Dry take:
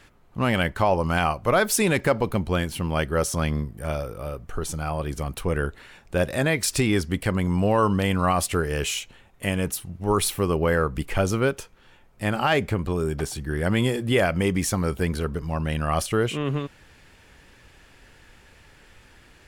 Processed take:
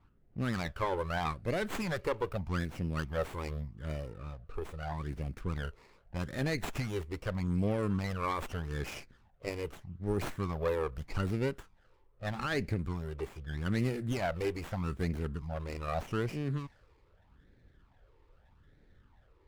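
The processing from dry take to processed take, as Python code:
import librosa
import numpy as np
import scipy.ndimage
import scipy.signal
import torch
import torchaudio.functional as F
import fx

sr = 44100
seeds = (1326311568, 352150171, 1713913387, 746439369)

y = fx.phaser_stages(x, sr, stages=8, low_hz=200.0, high_hz=1100.0, hz=0.81, feedback_pct=25)
y = fx.env_lowpass(y, sr, base_hz=1100.0, full_db=-24.5)
y = fx.running_max(y, sr, window=9)
y = y * 10.0 ** (-7.5 / 20.0)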